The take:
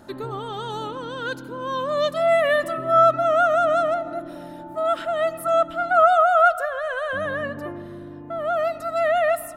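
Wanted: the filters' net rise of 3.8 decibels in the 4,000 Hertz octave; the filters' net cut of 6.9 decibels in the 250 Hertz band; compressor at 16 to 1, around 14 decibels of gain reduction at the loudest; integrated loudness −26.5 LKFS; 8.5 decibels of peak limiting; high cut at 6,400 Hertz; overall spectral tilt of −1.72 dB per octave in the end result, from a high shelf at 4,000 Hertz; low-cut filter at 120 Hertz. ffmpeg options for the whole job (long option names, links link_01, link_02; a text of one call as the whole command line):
ffmpeg -i in.wav -af "highpass=120,lowpass=6400,equalizer=frequency=250:width_type=o:gain=-9,highshelf=frequency=4000:gain=-5,equalizer=frequency=4000:width_type=o:gain=8,acompressor=threshold=-25dB:ratio=16,volume=8dB,alimiter=limit=-19dB:level=0:latency=1" out.wav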